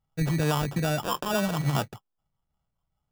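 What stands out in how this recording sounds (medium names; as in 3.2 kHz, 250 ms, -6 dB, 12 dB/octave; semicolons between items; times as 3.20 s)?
phasing stages 6, 2.4 Hz, lowest notch 540–3000 Hz; aliases and images of a low sample rate 2.1 kHz, jitter 0%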